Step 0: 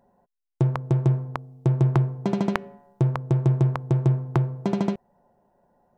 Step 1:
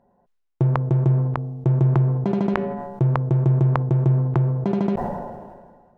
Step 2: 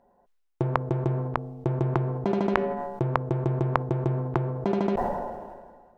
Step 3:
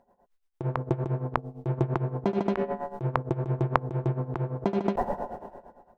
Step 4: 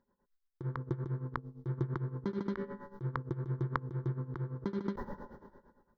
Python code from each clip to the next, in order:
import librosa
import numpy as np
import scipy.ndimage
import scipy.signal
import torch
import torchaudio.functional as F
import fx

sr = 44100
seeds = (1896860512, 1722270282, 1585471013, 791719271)

y1 = fx.lowpass(x, sr, hz=1800.0, slope=6)
y1 = fx.sustainer(y1, sr, db_per_s=36.0)
y1 = F.gain(torch.from_numpy(y1), 1.0).numpy()
y2 = fx.peak_eq(y1, sr, hz=140.0, db=-11.0, octaves=1.3)
y2 = F.gain(torch.from_numpy(y2), 1.0).numpy()
y3 = y2 * (1.0 - 0.8 / 2.0 + 0.8 / 2.0 * np.cos(2.0 * np.pi * 8.8 * (np.arange(len(y2)) / sr)))
y3 = F.gain(torch.from_numpy(y3), 1.5).numpy()
y4 = fx.fixed_phaser(y3, sr, hz=2600.0, stages=6)
y4 = F.gain(torch.from_numpy(y4), -6.5).numpy()